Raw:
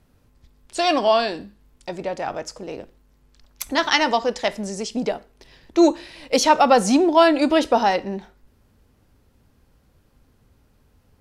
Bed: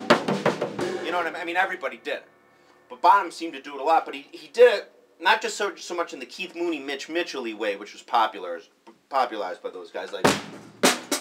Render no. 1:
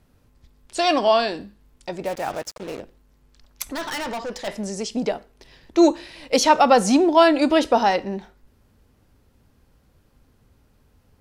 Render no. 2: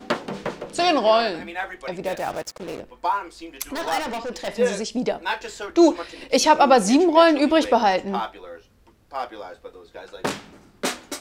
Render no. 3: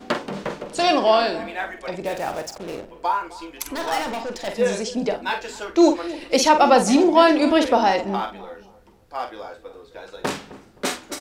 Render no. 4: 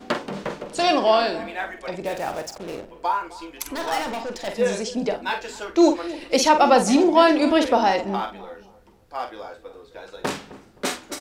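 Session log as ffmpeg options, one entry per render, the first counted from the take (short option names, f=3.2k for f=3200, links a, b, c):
-filter_complex "[0:a]asplit=3[a][b][c];[a]afade=t=out:st=2.04:d=0.02[d];[b]acrusher=bits=5:mix=0:aa=0.5,afade=t=in:st=2.04:d=0.02,afade=t=out:st=2.79:d=0.02[e];[c]afade=t=in:st=2.79:d=0.02[f];[d][e][f]amix=inputs=3:normalize=0,asplit=3[g][h][i];[g]afade=t=out:st=3.64:d=0.02[j];[h]aeval=exprs='(tanh(20*val(0)+0.2)-tanh(0.2))/20':c=same,afade=t=in:st=3.64:d=0.02,afade=t=out:st=4.47:d=0.02[k];[i]afade=t=in:st=4.47:d=0.02[l];[j][k][l]amix=inputs=3:normalize=0"
-filter_complex "[1:a]volume=-6.5dB[a];[0:a][a]amix=inputs=2:normalize=0"
-filter_complex "[0:a]asplit=2[a][b];[b]adelay=46,volume=-8.5dB[c];[a][c]amix=inputs=2:normalize=0,asplit=2[d][e];[e]adelay=261,lowpass=f=950:p=1,volume=-16dB,asplit=2[f][g];[g]adelay=261,lowpass=f=950:p=1,volume=0.39,asplit=2[h][i];[i]adelay=261,lowpass=f=950:p=1,volume=0.39[j];[d][f][h][j]amix=inputs=4:normalize=0"
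-af "volume=-1dB"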